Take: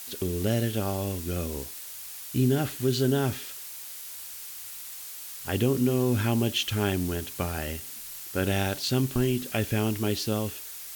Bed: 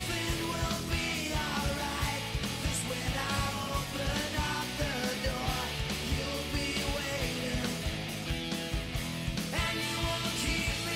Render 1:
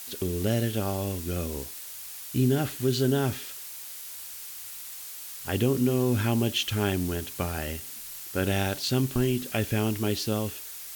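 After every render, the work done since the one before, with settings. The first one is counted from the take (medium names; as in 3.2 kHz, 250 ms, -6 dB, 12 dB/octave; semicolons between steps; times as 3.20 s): no audible change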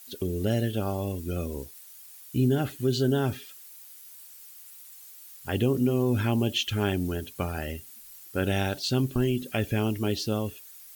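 noise reduction 12 dB, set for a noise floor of -41 dBFS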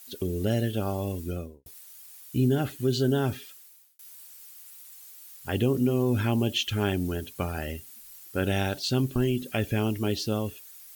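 1.22–1.66 s: studio fade out; 3.45–3.99 s: fade out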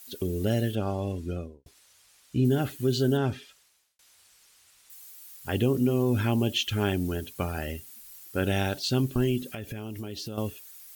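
0.75–2.45 s: distance through air 66 m; 3.17–4.90 s: distance through air 63 m; 9.42–10.38 s: compression, threshold -33 dBFS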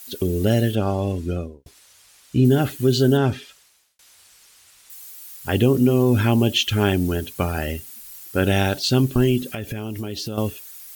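trim +7.5 dB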